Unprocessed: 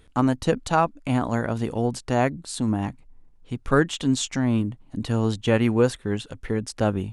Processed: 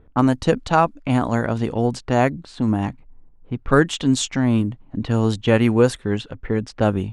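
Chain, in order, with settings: level-controlled noise filter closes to 990 Hz, open at -18 dBFS; trim +4 dB

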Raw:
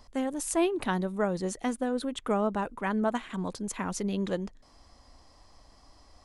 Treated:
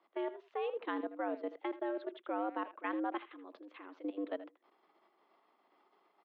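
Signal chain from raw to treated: level held to a coarse grid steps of 15 dB; speakerphone echo 80 ms, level -12 dB; mistuned SSB +100 Hz 160–3300 Hz; trim -5.5 dB

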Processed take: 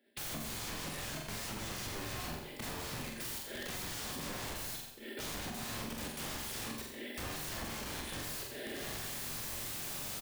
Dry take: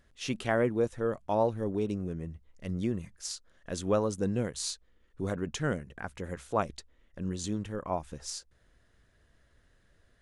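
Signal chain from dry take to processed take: companding laws mixed up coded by mu; recorder AGC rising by 26 dB/s; steep high-pass 240 Hz 72 dB/octave; static phaser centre 2.8 kHz, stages 4; comb 5 ms, depth 49%; peak limiter -27.5 dBFS, peak gain reduction 9.5 dB; integer overflow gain 43.5 dB; bass shelf 310 Hz +10.5 dB; gate -57 dBFS, range -22 dB; flutter echo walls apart 7.7 m, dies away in 0.51 s; compression, threshold -48 dBFS, peak gain reduction 8 dB; on a send at -4 dB: reverberation RT60 0.70 s, pre-delay 17 ms; on the sum: trim +8.5 dB

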